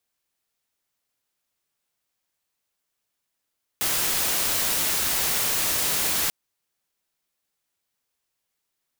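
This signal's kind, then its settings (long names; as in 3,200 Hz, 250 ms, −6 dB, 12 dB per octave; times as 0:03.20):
noise white, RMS −24 dBFS 2.49 s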